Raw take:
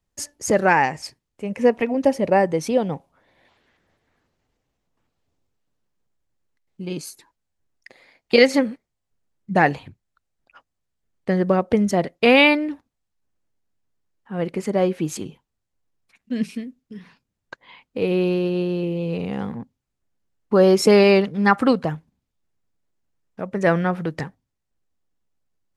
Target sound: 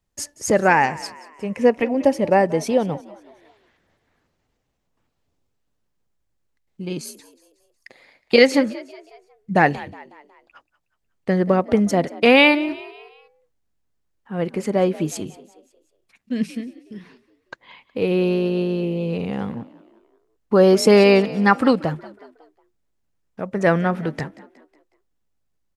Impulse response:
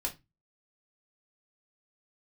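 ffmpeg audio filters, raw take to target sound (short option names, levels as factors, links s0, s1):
-filter_complex "[0:a]asplit=5[s0][s1][s2][s3][s4];[s1]adelay=183,afreqshift=51,volume=0.112[s5];[s2]adelay=366,afreqshift=102,volume=0.0519[s6];[s3]adelay=549,afreqshift=153,volume=0.0237[s7];[s4]adelay=732,afreqshift=204,volume=0.011[s8];[s0][s5][s6][s7][s8]amix=inputs=5:normalize=0,volume=1.12"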